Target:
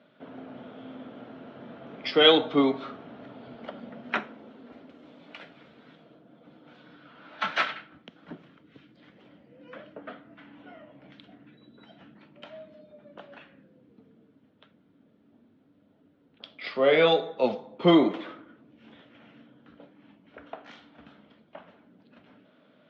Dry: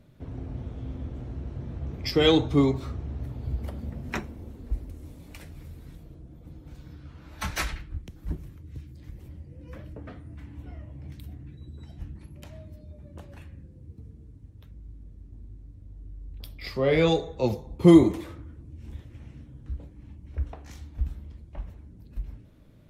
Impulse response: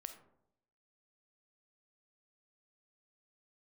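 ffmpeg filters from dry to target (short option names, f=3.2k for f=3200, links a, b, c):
-filter_complex "[0:a]highpass=f=230:w=0.5412,highpass=f=230:w=1.3066,equalizer=f=340:t=q:w=4:g=-8,equalizer=f=650:t=q:w=4:g=5,equalizer=f=1.4k:t=q:w=4:g=8,equalizer=f=3.2k:t=q:w=4:g=6,lowpass=f=3.7k:w=0.5412,lowpass=f=3.7k:w=1.3066,asplit=2[a][b];[1:a]atrim=start_sample=2205,highshelf=f=5.2k:g=11.5[c];[b][c]afir=irnorm=-1:irlink=0,volume=-6dB[d];[a][d]amix=inputs=2:normalize=0"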